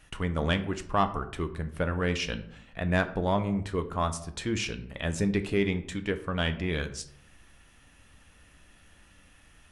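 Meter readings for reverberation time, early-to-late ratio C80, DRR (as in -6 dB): 0.65 s, 16.5 dB, 8.5 dB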